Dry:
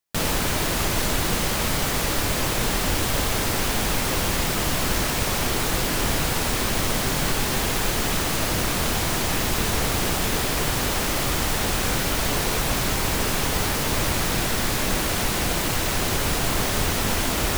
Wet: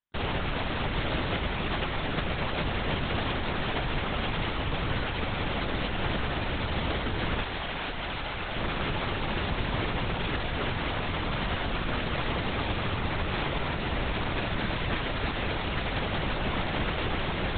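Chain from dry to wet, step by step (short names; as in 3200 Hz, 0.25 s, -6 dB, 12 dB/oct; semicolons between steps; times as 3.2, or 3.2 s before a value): 7.42–8.57 low shelf 240 Hz -10.5 dB; LPC vocoder at 8 kHz whisper; gain -5.5 dB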